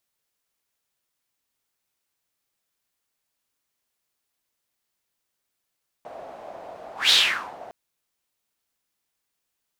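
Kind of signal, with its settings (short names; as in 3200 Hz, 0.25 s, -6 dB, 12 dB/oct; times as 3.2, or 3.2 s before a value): whoosh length 1.66 s, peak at 1.06, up 0.17 s, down 0.48 s, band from 670 Hz, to 3800 Hz, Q 4.7, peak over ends 24 dB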